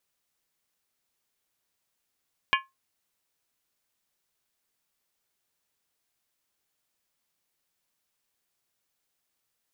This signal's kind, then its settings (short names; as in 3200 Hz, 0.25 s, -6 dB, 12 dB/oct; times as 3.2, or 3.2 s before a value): skin hit, lowest mode 1070 Hz, modes 6, decay 0.20 s, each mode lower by 1 dB, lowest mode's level -19.5 dB